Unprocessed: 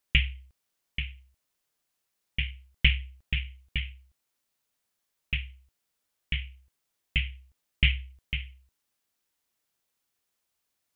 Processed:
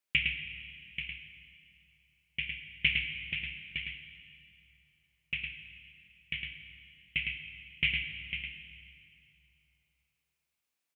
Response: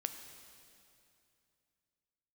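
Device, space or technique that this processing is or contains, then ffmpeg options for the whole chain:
PA in a hall: -filter_complex "[0:a]highpass=130,equalizer=f=2400:t=o:w=0.54:g=6.5,aecho=1:1:108:0.562[s0];[1:a]atrim=start_sample=2205[s1];[s0][s1]afir=irnorm=-1:irlink=0,volume=0.447"

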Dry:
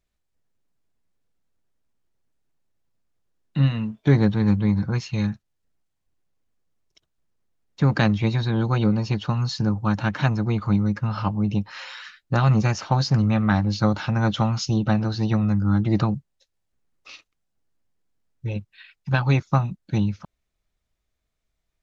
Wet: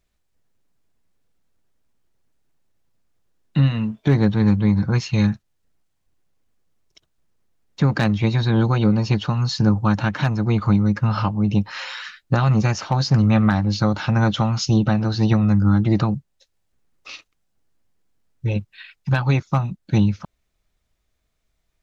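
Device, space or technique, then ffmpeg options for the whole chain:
clipper into limiter: -af "asoftclip=type=hard:threshold=0.422,alimiter=limit=0.211:level=0:latency=1:release=413,volume=2"

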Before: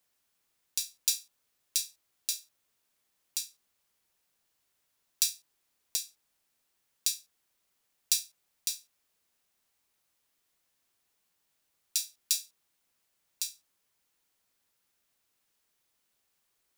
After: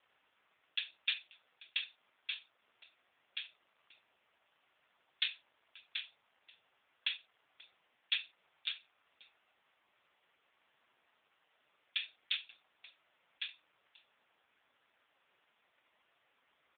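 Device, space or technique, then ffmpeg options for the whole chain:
satellite phone: -af "highpass=380,lowpass=3100,aecho=1:1:536:0.0668,volume=6.68" -ar 8000 -c:a libopencore_amrnb -b:a 5150

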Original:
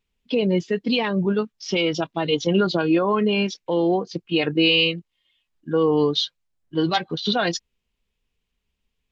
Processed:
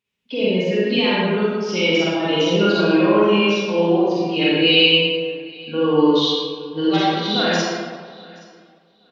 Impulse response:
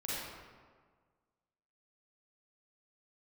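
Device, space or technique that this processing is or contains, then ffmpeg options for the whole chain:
PA in a hall: -filter_complex "[0:a]highpass=140,equalizer=f=2600:t=o:w=0.87:g=3.5,aecho=1:1:110:0.299,aecho=1:1:823|1646:0.0668|0.0127[s0];[1:a]atrim=start_sample=2205[s1];[s0][s1]afir=irnorm=-1:irlink=0"

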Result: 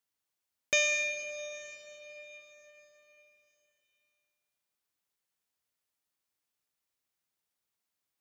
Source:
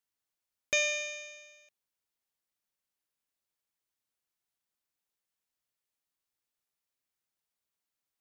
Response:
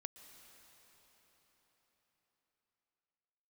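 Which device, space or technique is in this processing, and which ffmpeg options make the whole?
cathedral: -filter_complex "[0:a]highpass=41[s0];[1:a]atrim=start_sample=2205[s1];[s0][s1]afir=irnorm=-1:irlink=0,volume=2.11"

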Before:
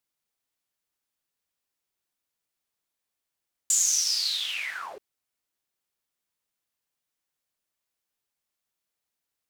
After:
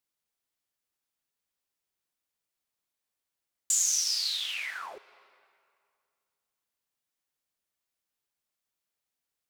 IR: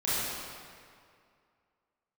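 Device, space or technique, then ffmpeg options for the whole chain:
compressed reverb return: -filter_complex "[0:a]asettb=1/sr,asplit=3[s0][s1][s2];[s0]atrim=end=4.204[s3];[s1]atrim=start=4.2:end=4.95,asetpts=PTS-STARTPTS,afade=t=in:d=0.004:c=qsin,afade=t=out:st=0.746:d=0.004:c=qsin,highpass=150[s4];[s2]atrim=start=4.946[s5];[s3][s4]acrossfade=d=0.004:c1=hsin:c2=qsin[s6];[s6][s5]acrossfade=d=0.004:c1=qsin:c2=hsin,asplit=2[s7][s8];[1:a]atrim=start_sample=2205[s9];[s8][s9]afir=irnorm=-1:irlink=0,acompressor=threshold=0.0501:ratio=6,volume=0.0596[s10];[s7][s10]amix=inputs=2:normalize=0,volume=0.708"

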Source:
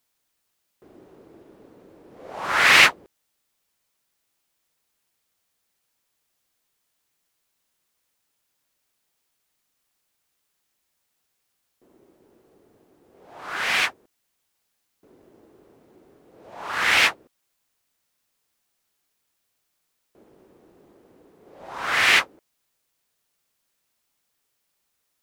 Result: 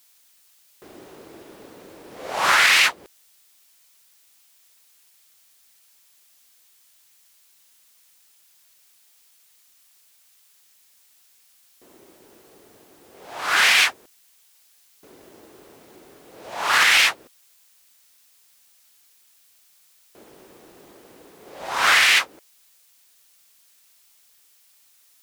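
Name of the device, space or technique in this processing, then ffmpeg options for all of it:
mastering chain: -af "equalizer=f=710:t=o:w=1.6:g=2,acompressor=threshold=0.0794:ratio=2.5,tiltshelf=f=1500:g=-7.5,alimiter=level_in=6.31:limit=0.891:release=50:level=0:latency=1,volume=0.531"

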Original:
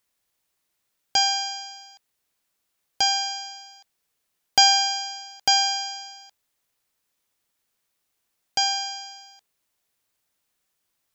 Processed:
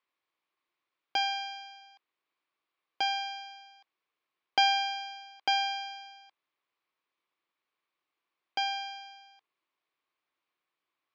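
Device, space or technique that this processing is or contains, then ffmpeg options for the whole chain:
kitchen radio: -filter_complex "[0:a]asplit=3[s0][s1][s2];[s0]afade=t=out:st=1.17:d=0.02[s3];[s1]highpass=520,afade=t=in:st=1.17:d=0.02,afade=t=out:st=1.8:d=0.02[s4];[s2]afade=t=in:st=1.8:d=0.02[s5];[s3][s4][s5]amix=inputs=3:normalize=0,highpass=190,equalizer=f=210:t=q:w=4:g=-7,equalizer=f=340:t=q:w=4:g=6,equalizer=f=1100:t=q:w=4:g=10,equalizer=f=2300:t=q:w=4:g=5,lowpass=f=4000:w=0.5412,lowpass=f=4000:w=1.3066,volume=0.447"

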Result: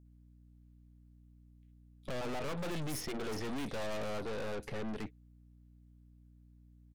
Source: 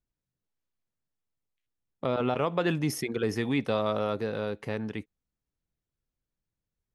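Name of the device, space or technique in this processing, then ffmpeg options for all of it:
valve amplifier with mains hum: -filter_complex "[0:a]acrossover=split=5600[s0][s1];[s0]adelay=50[s2];[s2][s1]amix=inputs=2:normalize=0,aeval=exprs='(tanh(141*val(0)+0.7)-tanh(0.7))/141':c=same,aeval=exprs='val(0)+0.000631*(sin(2*PI*60*n/s)+sin(2*PI*2*60*n/s)/2+sin(2*PI*3*60*n/s)/3+sin(2*PI*4*60*n/s)/4+sin(2*PI*5*60*n/s)/5)':c=same,volume=1.88"

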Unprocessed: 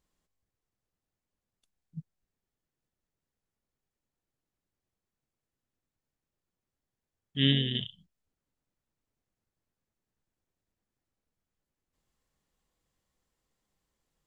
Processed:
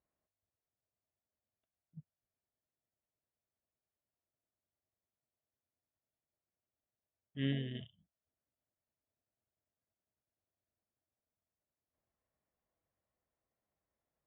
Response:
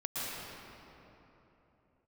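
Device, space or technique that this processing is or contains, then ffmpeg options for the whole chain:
bass cabinet: -af "highpass=62,equalizer=f=92:t=q:w=4:g=4,equalizer=f=170:t=q:w=4:g=-4,equalizer=f=640:t=q:w=4:g=10,lowpass=f=2300:w=0.5412,lowpass=f=2300:w=1.3066,volume=0.376"

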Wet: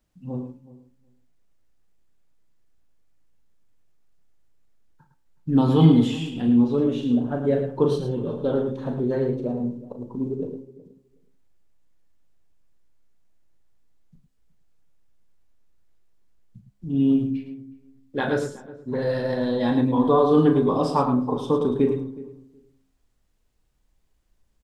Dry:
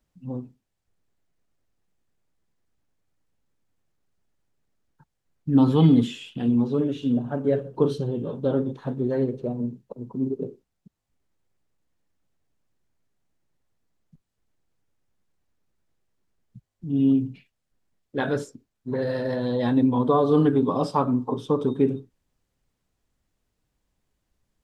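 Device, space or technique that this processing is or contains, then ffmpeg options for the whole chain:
slapback doubling: -filter_complex "[0:a]asplit=3[s0][s1][s2];[s1]adelay=37,volume=0.398[s3];[s2]adelay=108,volume=0.376[s4];[s0][s3][s4]amix=inputs=3:normalize=0,asplit=2[s5][s6];[s6]adelay=369,lowpass=f=930:p=1,volume=0.141,asplit=2[s7][s8];[s8]adelay=369,lowpass=f=930:p=1,volume=0.15[s9];[s5][s7][s9]amix=inputs=3:normalize=0,bandreject=f=66.96:t=h:w=4,bandreject=f=133.92:t=h:w=4,bandreject=f=200.88:t=h:w=4,bandreject=f=267.84:t=h:w=4,bandreject=f=334.8:t=h:w=4,bandreject=f=401.76:t=h:w=4,bandreject=f=468.72:t=h:w=4,bandreject=f=535.68:t=h:w=4,bandreject=f=602.64:t=h:w=4,bandreject=f=669.6:t=h:w=4,bandreject=f=736.56:t=h:w=4,bandreject=f=803.52:t=h:w=4,bandreject=f=870.48:t=h:w=4,bandreject=f=937.44:t=h:w=4,bandreject=f=1004.4:t=h:w=4,bandreject=f=1071.36:t=h:w=4,bandreject=f=1138.32:t=h:w=4,bandreject=f=1205.28:t=h:w=4,bandreject=f=1272.24:t=h:w=4,bandreject=f=1339.2:t=h:w=4,bandreject=f=1406.16:t=h:w=4,bandreject=f=1473.12:t=h:w=4,bandreject=f=1540.08:t=h:w=4,bandreject=f=1607.04:t=h:w=4,bandreject=f=1674:t=h:w=4,bandreject=f=1740.96:t=h:w=4,bandreject=f=1807.92:t=h:w=4,bandreject=f=1874.88:t=h:w=4,bandreject=f=1941.84:t=h:w=4,bandreject=f=2008.8:t=h:w=4,bandreject=f=2075.76:t=h:w=4,bandreject=f=2142.72:t=h:w=4,bandreject=f=2209.68:t=h:w=4,bandreject=f=2276.64:t=h:w=4,bandreject=f=2343.6:t=h:w=4,asubboost=boost=2:cutoff=67,volume=1.19"

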